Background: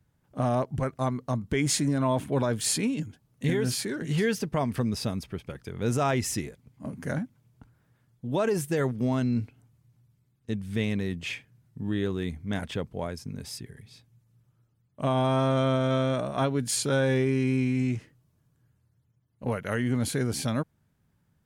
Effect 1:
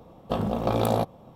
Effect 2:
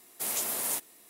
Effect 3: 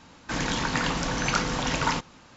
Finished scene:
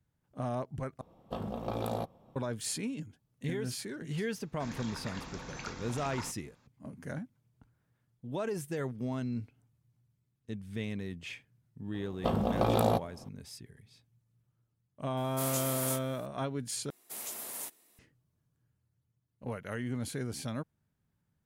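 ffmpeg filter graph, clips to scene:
ffmpeg -i bed.wav -i cue0.wav -i cue1.wav -i cue2.wav -filter_complex "[1:a]asplit=2[link_01][link_02];[2:a]asplit=2[link_03][link_04];[0:a]volume=-9dB[link_05];[3:a]bandreject=frequency=3000:width=12[link_06];[link_03]flanger=delay=20:depth=6.5:speed=2.7[link_07];[link_05]asplit=3[link_08][link_09][link_10];[link_08]atrim=end=1.014[link_11];[link_01]atrim=end=1.35,asetpts=PTS-STARTPTS,volume=-11dB[link_12];[link_09]atrim=start=2.356:end=16.904[link_13];[link_04]atrim=end=1.09,asetpts=PTS-STARTPTS,volume=-9.5dB[link_14];[link_10]atrim=start=17.986[link_15];[link_06]atrim=end=2.36,asetpts=PTS-STARTPTS,volume=-17dB,afade=type=in:duration=0.004:curve=hsin,afade=type=out:start_time=2.356:duration=0.004:curve=hsin,adelay=4310[link_16];[link_02]atrim=end=1.35,asetpts=PTS-STARTPTS,volume=-3dB,afade=type=in:duration=0.004:curve=hsin,afade=type=out:start_time=1.346:duration=0.004:curve=hsin,adelay=11940[link_17];[link_07]atrim=end=1.09,asetpts=PTS-STARTPTS,volume=-1dB,afade=type=in:duration=0.004:curve=hsin,afade=type=out:start_time=1.086:duration=0.004:curve=hsin,adelay=15170[link_18];[link_11][link_12]acrossfade=duration=0.004:curve1=hsin:curve2=hsin[link_19];[link_19][link_13]acrossfade=duration=0.004:curve1=hsin:curve2=hsin[link_20];[link_20][link_14]acrossfade=duration=0.004:curve1=hsin:curve2=hsin[link_21];[link_21][link_15]acrossfade=duration=0.004:curve1=hsin:curve2=hsin[link_22];[link_22][link_16][link_17][link_18]amix=inputs=4:normalize=0" out.wav

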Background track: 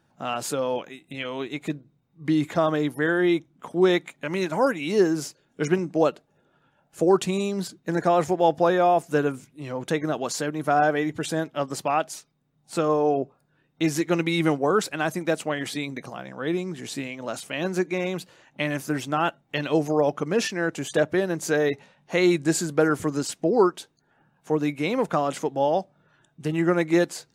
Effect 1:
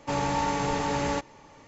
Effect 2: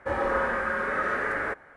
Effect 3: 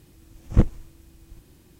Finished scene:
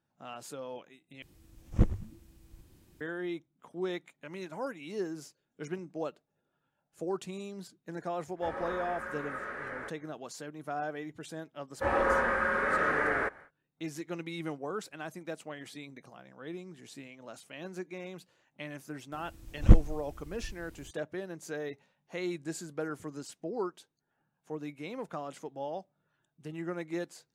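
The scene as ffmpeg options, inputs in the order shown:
ffmpeg -i bed.wav -i cue0.wav -i cue1.wav -i cue2.wav -filter_complex "[3:a]asplit=2[link_01][link_02];[2:a]asplit=2[link_03][link_04];[0:a]volume=-15.5dB[link_05];[link_01]asplit=4[link_06][link_07][link_08][link_09];[link_07]adelay=104,afreqshift=-120,volume=-14.5dB[link_10];[link_08]adelay=208,afreqshift=-240,volume=-25dB[link_11];[link_09]adelay=312,afreqshift=-360,volume=-35.4dB[link_12];[link_06][link_10][link_11][link_12]amix=inputs=4:normalize=0[link_13];[link_02]asubboost=boost=4.5:cutoff=84[link_14];[link_05]asplit=2[link_15][link_16];[link_15]atrim=end=1.224[link_17];[link_13]atrim=end=1.79,asetpts=PTS-STARTPTS,volume=-7.5dB[link_18];[link_16]atrim=start=3.006[link_19];[link_03]atrim=end=1.76,asetpts=PTS-STARTPTS,volume=-12dB,afade=type=in:duration=0.004:curve=hsin,afade=type=out:start_time=1.756:duration=0.004:curve=hsin,adelay=8360[link_20];[link_04]atrim=end=1.76,asetpts=PTS-STARTPTS,volume=-1dB,afade=type=in:duration=0.1,afade=type=out:start_time=1.66:duration=0.1,adelay=11750[link_21];[link_14]atrim=end=1.79,asetpts=PTS-STARTPTS,volume=-2dB,afade=type=in:duration=0.004:curve=hsin,afade=type=out:start_time=1.786:duration=0.004:curve=hsin,adelay=19120[link_22];[link_17][link_18]acrossfade=duration=0.004:curve1=hsin:curve2=hsin[link_23];[link_23][link_19]acrossfade=duration=0.004:curve1=hsin:curve2=hsin[link_24];[link_24][link_20][link_21][link_22]amix=inputs=4:normalize=0" out.wav

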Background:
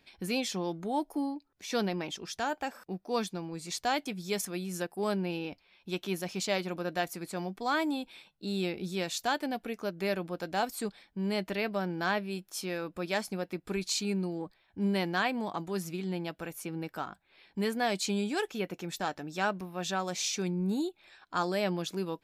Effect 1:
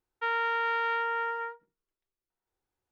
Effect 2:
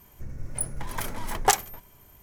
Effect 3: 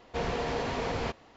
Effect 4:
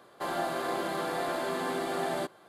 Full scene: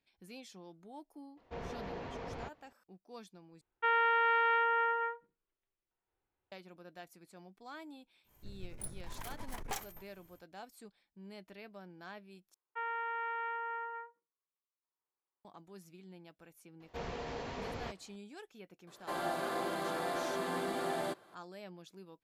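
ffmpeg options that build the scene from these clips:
ffmpeg -i bed.wav -i cue0.wav -i cue1.wav -i cue2.wav -i cue3.wav -filter_complex "[3:a]asplit=2[link_01][link_02];[1:a]asplit=2[link_03][link_04];[0:a]volume=-19dB[link_05];[link_01]aemphasis=mode=reproduction:type=75kf[link_06];[link_03]lowpass=frequency=3300:width=0.5412,lowpass=frequency=3300:width=1.3066[link_07];[2:a]aeval=exprs='(tanh(17.8*val(0)+0.6)-tanh(0.6))/17.8':channel_layout=same[link_08];[link_04]highpass=410,equalizer=frequency=710:width_type=q:width=4:gain=-4,equalizer=frequency=1100:width_type=q:width=4:gain=9,equalizer=frequency=1500:width_type=q:width=4:gain=-4,lowpass=frequency=2500:width=0.5412,lowpass=frequency=2500:width=1.3066[link_09];[link_05]asplit=3[link_10][link_11][link_12];[link_10]atrim=end=3.614[link_13];[link_07]atrim=end=2.91[link_14];[link_11]atrim=start=6.516:end=12.544[link_15];[link_09]atrim=end=2.91,asetpts=PTS-STARTPTS,volume=-9dB[link_16];[link_12]atrim=start=15.446[link_17];[link_06]atrim=end=1.36,asetpts=PTS-STARTPTS,volume=-11dB,afade=type=in:duration=0.004:curve=hsin,afade=type=out:start_time=1.356:duration=0.004:curve=hsin,adelay=1370[link_18];[link_08]atrim=end=2.22,asetpts=PTS-STARTPTS,volume=-9.5dB,afade=type=in:duration=0.1,afade=type=out:start_time=2.12:duration=0.1,adelay=8230[link_19];[link_02]atrim=end=1.36,asetpts=PTS-STARTPTS,volume=-10dB,afade=type=in:duration=0.004:curve=hsin,afade=type=out:start_time=1.356:duration=0.004:curve=hsin,adelay=16800[link_20];[4:a]atrim=end=2.48,asetpts=PTS-STARTPTS,volume=-4.5dB,afade=type=in:duration=0.004:curve=hsin,afade=type=out:start_time=2.476:duration=0.004:curve=hsin,adelay=18870[link_21];[link_13][link_14]acrossfade=duration=0.004:curve1=hsin:curve2=hsin[link_22];[link_22][link_15]acrossfade=duration=0.004:curve1=hsin:curve2=hsin[link_23];[link_23][link_16]acrossfade=duration=0.004:curve1=hsin:curve2=hsin[link_24];[link_24][link_17]acrossfade=duration=0.004:curve1=hsin:curve2=hsin[link_25];[link_25][link_18][link_19][link_20][link_21]amix=inputs=5:normalize=0" out.wav

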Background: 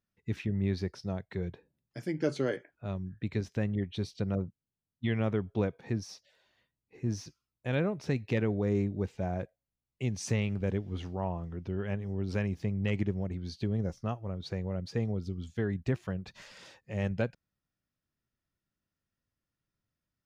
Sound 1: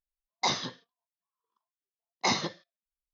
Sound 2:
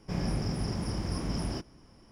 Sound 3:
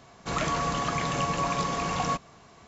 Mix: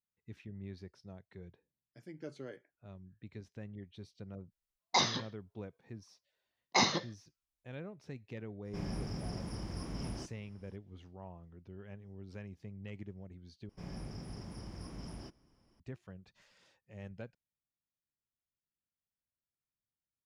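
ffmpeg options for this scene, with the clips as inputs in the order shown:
ffmpeg -i bed.wav -i cue0.wav -i cue1.wav -filter_complex "[2:a]asplit=2[link_01][link_02];[0:a]volume=-15.5dB,asplit=2[link_03][link_04];[link_03]atrim=end=13.694[link_05];[link_02]atrim=end=2.11,asetpts=PTS-STARTPTS,volume=-13.5dB[link_06];[link_04]atrim=start=15.796[link_07];[1:a]atrim=end=3.13,asetpts=PTS-STARTPTS,volume=-1dB,afade=type=in:duration=0.004:curve=hsin,afade=type=out:start_time=3.126:duration=0.004:curve=hsin,adelay=4510[link_08];[link_01]atrim=end=2.11,asetpts=PTS-STARTPTS,volume=-8.5dB,afade=type=in:duration=0.004:curve=hsin,afade=type=out:start_time=2.106:duration=0.004:curve=hsin,adelay=8650[link_09];[link_05][link_06]acrossfade=duration=0.004:curve1=hsin:curve2=hsin[link_10];[link_10][link_07]acrossfade=duration=0.004:curve1=hsin:curve2=hsin[link_11];[link_11][link_08][link_09]amix=inputs=3:normalize=0" out.wav

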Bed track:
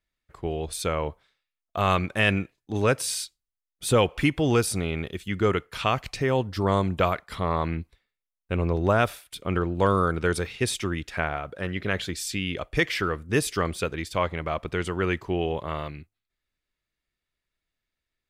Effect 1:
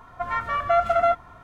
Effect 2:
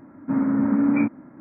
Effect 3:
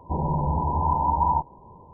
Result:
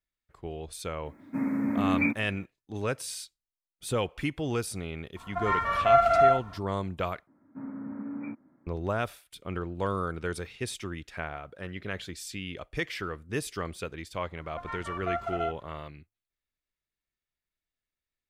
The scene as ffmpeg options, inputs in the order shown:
ffmpeg -i bed.wav -i cue0.wav -i cue1.wav -filter_complex "[2:a]asplit=2[link_01][link_02];[1:a]asplit=2[link_03][link_04];[0:a]volume=-8.5dB[link_05];[link_01]aexciter=amount=7.2:drive=4.5:freq=2100[link_06];[link_03]aecho=1:1:43.73|90.38:0.794|0.562[link_07];[link_04]aresample=32000,aresample=44100[link_08];[link_05]asplit=2[link_09][link_10];[link_09]atrim=end=7.274[link_11];[link_02]atrim=end=1.4,asetpts=PTS-STARTPTS,volume=-17.5dB[link_12];[link_10]atrim=start=8.666[link_13];[link_06]atrim=end=1.4,asetpts=PTS-STARTPTS,volume=-7.5dB,afade=type=in:duration=0.004:curve=hsin,afade=type=out:start_time=1.396:duration=0.004:curve=hsin,adelay=1050[link_14];[link_07]atrim=end=1.43,asetpts=PTS-STARTPTS,volume=-4dB,afade=type=in:duration=0.004:curve=hsin,afade=type=out:start_time=1.426:duration=0.004:curve=hsin,adelay=5160[link_15];[link_08]atrim=end=1.43,asetpts=PTS-STARTPTS,volume=-12dB,afade=type=in:duration=0.004:curve=hsin,afade=type=out:start_time=1.426:duration=0.004:curve=hsin,adelay=14370[link_16];[link_11][link_12]acrossfade=duration=0.004:curve1=hsin:curve2=hsin[link_17];[link_17][link_13]acrossfade=duration=0.004:curve1=hsin:curve2=hsin[link_18];[link_18][link_14][link_15][link_16]amix=inputs=4:normalize=0" out.wav

